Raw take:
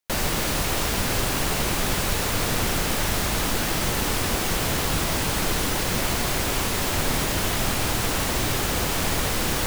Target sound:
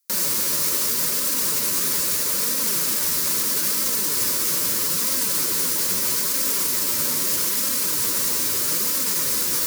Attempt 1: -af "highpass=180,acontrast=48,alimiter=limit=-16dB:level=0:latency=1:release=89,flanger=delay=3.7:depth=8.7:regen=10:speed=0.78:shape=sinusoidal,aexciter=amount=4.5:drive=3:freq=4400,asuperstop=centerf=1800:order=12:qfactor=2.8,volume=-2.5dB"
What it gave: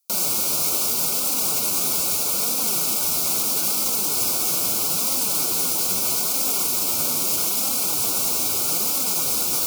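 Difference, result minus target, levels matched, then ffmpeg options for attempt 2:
2,000 Hz band −4.0 dB
-af "highpass=180,acontrast=48,alimiter=limit=-16dB:level=0:latency=1:release=89,flanger=delay=3.7:depth=8.7:regen=10:speed=0.78:shape=sinusoidal,aexciter=amount=4.5:drive=3:freq=4400,asuperstop=centerf=740:order=12:qfactor=2.8,volume=-2.5dB"

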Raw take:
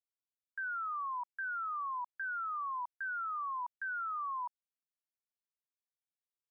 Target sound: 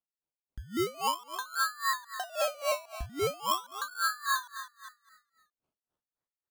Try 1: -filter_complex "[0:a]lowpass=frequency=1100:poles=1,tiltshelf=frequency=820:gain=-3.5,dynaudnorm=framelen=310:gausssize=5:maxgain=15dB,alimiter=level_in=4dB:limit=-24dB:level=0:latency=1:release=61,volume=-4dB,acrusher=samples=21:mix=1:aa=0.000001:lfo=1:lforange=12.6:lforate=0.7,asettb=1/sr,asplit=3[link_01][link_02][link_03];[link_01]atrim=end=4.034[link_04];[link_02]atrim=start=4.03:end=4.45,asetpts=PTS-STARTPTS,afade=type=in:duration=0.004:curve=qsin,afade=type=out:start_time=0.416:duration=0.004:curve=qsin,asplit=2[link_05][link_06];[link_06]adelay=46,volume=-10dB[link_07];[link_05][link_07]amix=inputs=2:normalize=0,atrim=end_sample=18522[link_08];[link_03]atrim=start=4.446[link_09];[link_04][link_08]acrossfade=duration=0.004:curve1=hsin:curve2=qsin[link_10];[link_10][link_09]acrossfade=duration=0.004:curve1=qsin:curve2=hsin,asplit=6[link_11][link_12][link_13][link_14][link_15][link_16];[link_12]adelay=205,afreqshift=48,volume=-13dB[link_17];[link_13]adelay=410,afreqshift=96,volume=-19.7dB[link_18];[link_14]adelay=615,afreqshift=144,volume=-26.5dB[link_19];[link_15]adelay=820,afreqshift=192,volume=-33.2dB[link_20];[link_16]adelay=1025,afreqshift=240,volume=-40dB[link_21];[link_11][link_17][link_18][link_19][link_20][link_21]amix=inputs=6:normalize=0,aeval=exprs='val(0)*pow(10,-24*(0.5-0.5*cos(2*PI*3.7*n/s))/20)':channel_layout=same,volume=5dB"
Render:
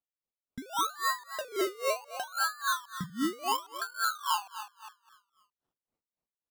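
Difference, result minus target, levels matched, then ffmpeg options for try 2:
sample-and-hold swept by an LFO: distortion +5 dB
-filter_complex "[0:a]lowpass=frequency=1100:poles=1,tiltshelf=frequency=820:gain=-3.5,dynaudnorm=framelen=310:gausssize=5:maxgain=15dB,alimiter=level_in=4dB:limit=-24dB:level=0:latency=1:release=61,volume=-4dB,acrusher=samples=21:mix=1:aa=0.000001:lfo=1:lforange=12.6:lforate=0.43,asettb=1/sr,asplit=3[link_01][link_02][link_03];[link_01]atrim=end=4.034[link_04];[link_02]atrim=start=4.03:end=4.45,asetpts=PTS-STARTPTS,afade=type=in:duration=0.004:curve=qsin,afade=type=out:start_time=0.416:duration=0.004:curve=qsin,asplit=2[link_05][link_06];[link_06]adelay=46,volume=-10dB[link_07];[link_05][link_07]amix=inputs=2:normalize=0,atrim=end_sample=18522[link_08];[link_03]atrim=start=4.446[link_09];[link_04][link_08]acrossfade=duration=0.004:curve1=hsin:curve2=qsin[link_10];[link_10][link_09]acrossfade=duration=0.004:curve1=qsin:curve2=hsin,asplit=6[link_11][link_12][link_13][link_14][link_15][link_16];[link_12]adelay=205,afreqshift=48,volume=-13dB[link_17];[link_13]adelay=410,afreqshift=96,volume=-19.7dB[link_18];[link_14]adelay=615,afreqshift=144,volume=-26.5dB[link_19];[link_15]adelay=820,afreqshift=192,volume=-33.2dB[link_20];[link_16]adelay=1025,afreqshift=240,volume=-40dB[link_21];[link_11][link_17][link_18][link_19][link_20][link_21]amix=inputs=6:normalize=0,aeval=exprs='val(0)*pow(10,-24*(0.5-0.5*cos(2*PI*3.7*n/s))/20)':channel_layout=same,volume=5dB"

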